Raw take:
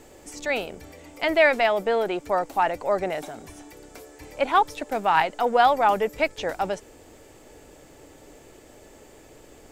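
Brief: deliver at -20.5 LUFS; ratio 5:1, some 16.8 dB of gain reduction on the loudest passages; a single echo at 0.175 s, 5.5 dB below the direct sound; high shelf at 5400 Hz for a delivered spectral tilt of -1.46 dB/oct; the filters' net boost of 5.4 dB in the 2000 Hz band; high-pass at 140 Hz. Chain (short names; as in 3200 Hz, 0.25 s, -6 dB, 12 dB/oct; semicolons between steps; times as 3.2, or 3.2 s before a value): HPF 140 Hz; bell 2000 Hz +7.5 dB; high shelf 5400 Hz -8.5 dB; compressor 5:1, threshold -31 dBFS; echo 0.175 s -5.5 dB; gain +13.5 dB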